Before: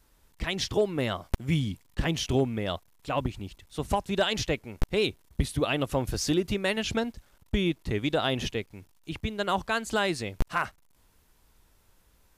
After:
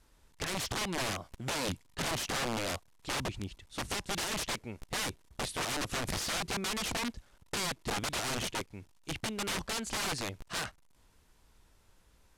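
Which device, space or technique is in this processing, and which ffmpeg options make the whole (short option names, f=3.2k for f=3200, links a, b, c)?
overflowing digital effects unit: -af "aeval=exprs='(mod(22.4*val(0)+1,2)-1)/22.4':c=same,lowpass=10k,volume=-1dB"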